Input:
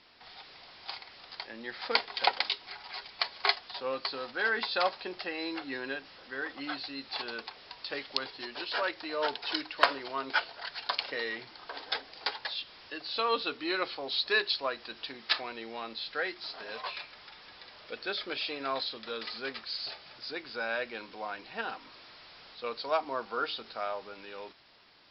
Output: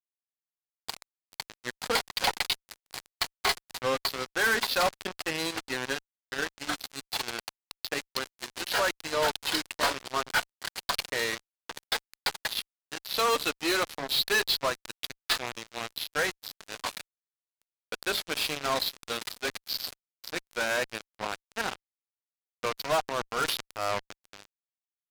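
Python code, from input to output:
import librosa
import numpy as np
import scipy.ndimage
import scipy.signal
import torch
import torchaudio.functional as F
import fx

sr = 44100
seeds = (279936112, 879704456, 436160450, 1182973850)

y = fx.fuzz(x, sr, gain_db=35.0, gate_db=-35.0)
y = fx.transient(y, sr, attack_db=-5, sustain_db=8, at=(23.07, 24.14))
y = y * librosa.db_to_amplitude(-7.5)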